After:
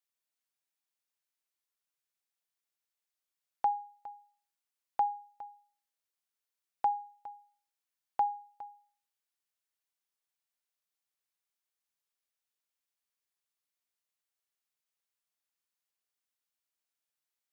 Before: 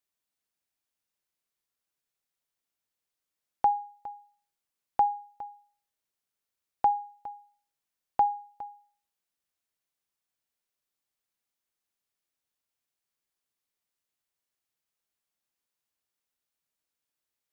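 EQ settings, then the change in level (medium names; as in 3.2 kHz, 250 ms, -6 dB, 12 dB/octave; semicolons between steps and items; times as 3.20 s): bass shelf 410 Hz -11.5 dB; -3.0 dB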